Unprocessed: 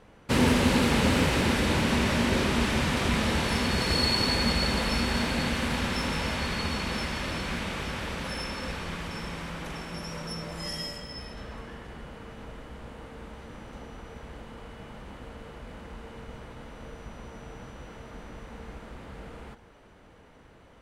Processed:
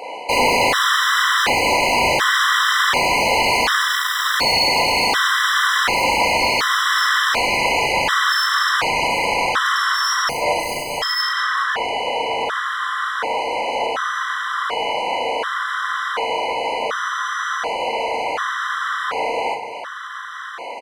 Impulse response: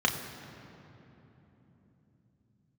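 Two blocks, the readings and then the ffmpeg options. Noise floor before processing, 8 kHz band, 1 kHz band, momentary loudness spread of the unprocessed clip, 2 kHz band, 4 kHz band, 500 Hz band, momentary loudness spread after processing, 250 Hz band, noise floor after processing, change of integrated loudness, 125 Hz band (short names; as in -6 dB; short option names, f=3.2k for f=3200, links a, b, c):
-54 dBFS, +12.0 dB, +17.5 dB, 21 LU, +15.5 dB, +12.0 dB, +10.5 dB, 7 LU, -4.0 dB, -31 dBFS, +9.5 dB, -7.0 dB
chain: -filter_complex "[0:a]highpass=680,asplit=2[a][b];[b]highpass=f=720:p=1,volume=31dB,asoftclip=type=tanh:threshold=-15dB[c];[a][c]amix=inputs=2:normalize=0,lowpass=f=2.8k:p=1,volume=-6dB,asplit=2[d][e];[e]adelay=37,volume=-5dB[f];[d][f]amix=inputs=2:normalize=0,asplit=2[g][h];[1:a]atrim=start_sample=2205[i];[h][i]afir=irnorm=-1:irlink=0,volume=-21dB[j];[g][j]amix=inputs=2:normalize=0,afftfilt=real='re*gt(sin(2*PI*0.68*pts/sr)*(1-2*mod(floor(b*sr/1024/1000),2)),0)':imag='im*gt(sin(2*PI*0.68*pts/sr)*(1-2*mod(floor(b*sr/1024/1000),2)),0)':win_size=1024:overlap=0.75,volume=8dB"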